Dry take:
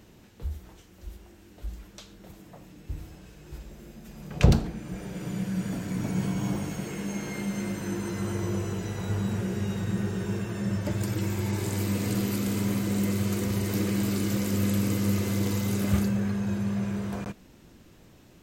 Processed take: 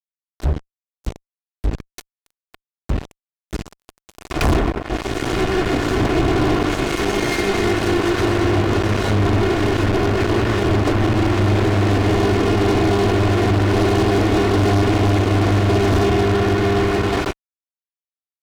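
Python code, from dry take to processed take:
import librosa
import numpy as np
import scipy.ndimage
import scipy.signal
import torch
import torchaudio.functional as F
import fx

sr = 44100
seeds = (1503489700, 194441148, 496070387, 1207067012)

y = fx.lower_of_two(x, sr, delay_ms=2.8)
y = fx.env_lowpass_down(y, sr, base_hz=1400.0, full_db=-28.0)
y = fx.fuzz(y, sr, gain_db=39.0, gate_db=-39.0)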